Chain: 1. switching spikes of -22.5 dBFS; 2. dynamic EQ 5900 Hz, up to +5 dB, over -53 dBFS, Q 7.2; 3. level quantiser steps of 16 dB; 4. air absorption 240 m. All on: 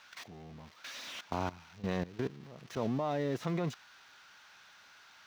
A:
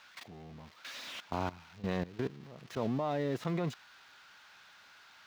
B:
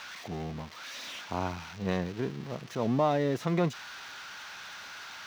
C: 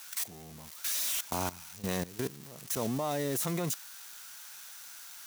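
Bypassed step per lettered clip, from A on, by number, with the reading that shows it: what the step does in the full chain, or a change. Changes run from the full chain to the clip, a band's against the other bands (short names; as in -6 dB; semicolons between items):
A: 2, 8 kHz band -2.5 dB; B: 3, momentary loudness spread change -8 LU; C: 4, 8 kHz band +18.5 dB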